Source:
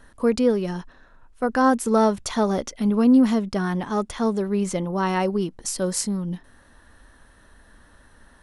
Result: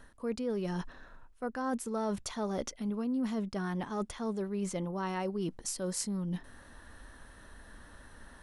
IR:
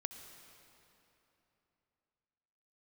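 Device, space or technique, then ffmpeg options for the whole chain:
compression on the reversed sound: -af "areverse,acompressor=threshold=-33dB:ratio=5,areverse"

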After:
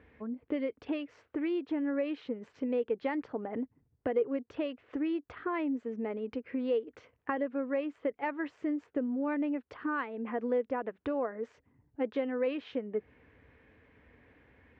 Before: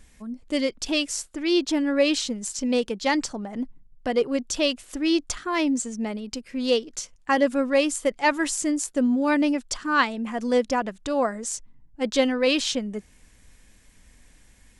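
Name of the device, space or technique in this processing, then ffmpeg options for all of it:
bass amplifier: -af "acompressor=threshold=-33dB:ratio=5,highpass=f=73:w=0.5412,highpass=f=73:w=1.3066,equalizer=f=190:t=q:w=4:g=-9,equalizer=f=280:t=q:w=4:g=3,equalizer=f=450:t=q:w=4:g=9,lowpass=f=2.3k:w=0.5412,lowpass=f=2.3k:w=1.3066"

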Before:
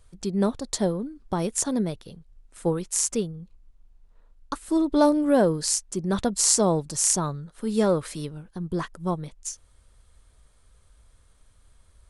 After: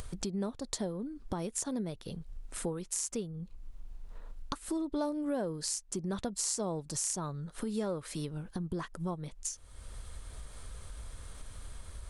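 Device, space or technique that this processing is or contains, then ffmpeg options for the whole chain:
upward and downward compression: -af "acompressor=mode=upward:threshold=-24dB:ratio=2.5,acompressor=threshold=-29dB:ratio=3,volume=-4.5dB"

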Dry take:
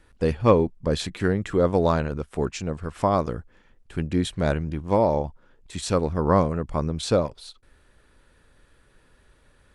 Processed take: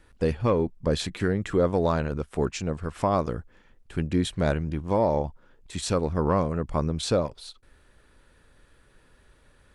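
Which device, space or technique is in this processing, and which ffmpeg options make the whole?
soft clipper into limiter: -af "asoftclip=type=tanh:threshold=-5dB,alimiter=limit=-13dB:level=0:latency=1:release=246"

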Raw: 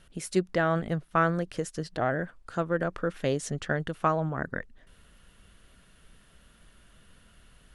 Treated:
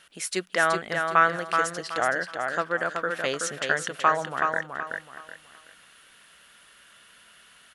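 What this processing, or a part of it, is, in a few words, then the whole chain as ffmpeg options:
filter by subtraction: -filter_complex "[0:a]aecho=1:1:376|752|1128|1504:0.562|0.169|0.0506|0.0152,asplit=2[a][b];[b]lowpass=1.8k,volume=-1[c];[a][c]amix=inputs=2:normalize=0,volume=6.5dB"

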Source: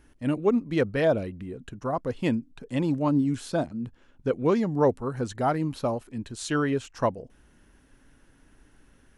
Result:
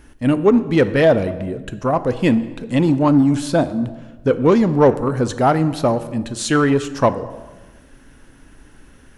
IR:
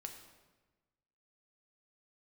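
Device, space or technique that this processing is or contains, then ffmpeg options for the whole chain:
saturated reverb return: -filter_complex "[0:a]asplit=2[a][b];[1:a]atrim=start_sample=2205[c];[b][c]afir=irnorm=-1:irlink=0,asoftclip=type=tanh:threshold=-26.5dB,volume=2dB[d];[a][d]amix=inputs=2:normalize=0,volume=6.5dB"

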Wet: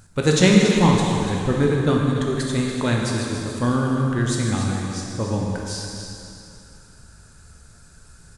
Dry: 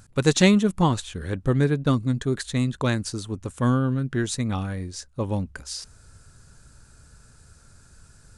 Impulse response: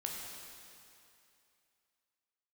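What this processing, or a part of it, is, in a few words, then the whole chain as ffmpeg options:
cave: -filter_complex "[0:a]aecho=1:1:286:0.316[a];[1:a]atrim=start_sample=2205[b];[a][b]afir=irnorm=-1:irlink=0,volume=3dB"

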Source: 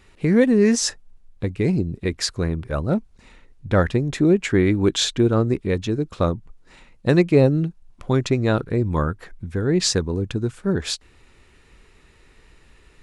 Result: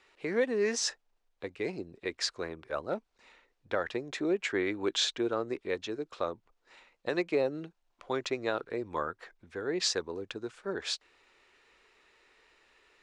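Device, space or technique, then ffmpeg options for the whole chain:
DJ mixer with the lows and highs turned down: -filter_complex "[0:a]acrossover=split=370 7200:gain=0.0708 1 0.126[a][b][c];[a][b][c]amix=inputs=3:normalize=0,alimiter=limit=-12.5dB:level=0:latency=1:release=114,volume=-6dB"

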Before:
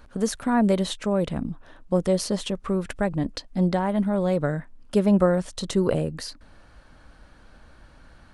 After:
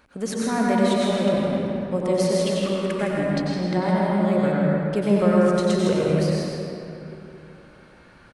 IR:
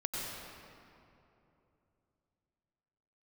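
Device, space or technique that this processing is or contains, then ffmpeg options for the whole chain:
PA in a hall: -filter_complex "[0:a]highpass=f=160:p=1,equalizer=f=2.3k:t=o:w=0.49:g=6.5,aecho=1:1:160:0.398[a];[1:a]atrim=start_sample=2205[b];[a][b]afir=irnorm=-1:irlink=0,asettb=1/sr,asplit=3[c][d][e];[c]atrim=end=4.524[f];[d]atrim=start=4.52:end=4.96,asetpts=PTS-STARTPTS,afade=t=in:d=0.004:c=qsin,afade=t=out:st=0.436:d=0.004:c=qsin,lowpass=6.5k[g];[e]atrim=start=4.956[h];[f][g]acrossfade=d=0.004:c1=hsin:c2=qsin[i];[i][h]acrossfade=d=0.004:c1=qsin:c2=hsin,volume=-1.5dB"

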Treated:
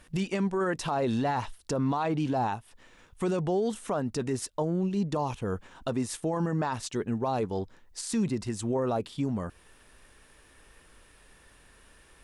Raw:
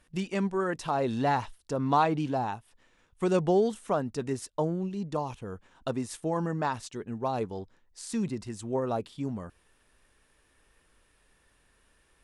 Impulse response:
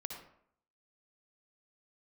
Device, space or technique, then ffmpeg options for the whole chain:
stacked limiters: -af "alimiter=limit=-18.5dB:level=0:latency=1:release=217,alimiter=limit=-24dB:level=0:latency=1:release=11,alimiter=level_in=5.5dB:limit=-24dB:level=0:latency=1:release=391,volume=-5.5dB,volume=9dB"

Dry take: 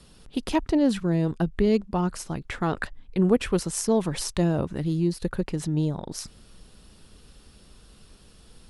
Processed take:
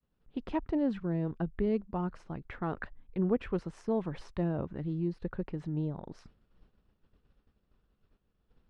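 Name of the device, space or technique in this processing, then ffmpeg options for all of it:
hearing-loss simulation: -af "lowpass=2k,agate=range=-33dB:threshold=-42dB:ratio=3:detection=peak,volume=-8.5dB"

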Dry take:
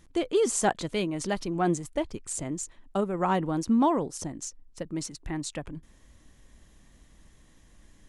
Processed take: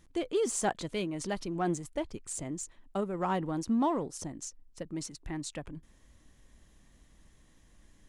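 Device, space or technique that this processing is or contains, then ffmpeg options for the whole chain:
parallel distortion: -filter_complex "[0:a]asplit=2[a][b];[b]asoftclip=type=hard:threshold=-30dB,volume=-12.5dB[c];[a][c]amix=inputs=2:normalize=0,volume=-6dB"

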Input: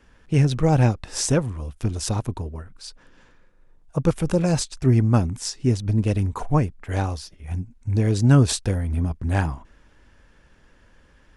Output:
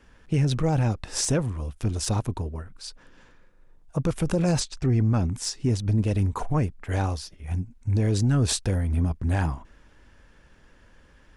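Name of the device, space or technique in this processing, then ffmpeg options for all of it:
soft clipper into limiter: -filter_complex "[0:a]asettb=1/sr,asplit=3[a][b][c];[a]atrim=end=4.604[d];[b]atrim=start=4.6:end=5.31,asetpts=PTS-STARTPTS,afade=t=in:d=0.004:c=qsin,afade=t=out:st=0.706:d=0.004:c=qsin,lowpass=7.1k[e];[c]atrim=start=5.306[f];[d][e]acrossfade=d=0.004:c1=hsin:c2=qsin[g];[g][f]acrossfade=d=0.004:c1=qsin:c2=hsin,asoftclip=type=tanh:threshold=-7.5dB,alimiter=limit=-15dB:level=0:latency=1:release=22"

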